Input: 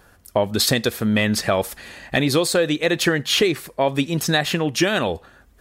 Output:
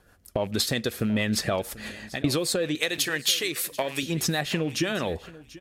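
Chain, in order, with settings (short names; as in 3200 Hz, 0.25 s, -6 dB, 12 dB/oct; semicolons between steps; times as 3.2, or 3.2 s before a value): rattling part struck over -30 dBFS, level -29 dBFS; gate -41 dBFS, range -13 dB; 1.6–2.24 fade out; 2.75–4.03 tilt +3.5 dB/oct; compressor 5:1, threshold -31 dBFS, peak gain reduction 19 dB; rotary speaker horn 6.3 Hz; feedback echo 0.738 s, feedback 16%, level -19 dB; gain +8.5 dB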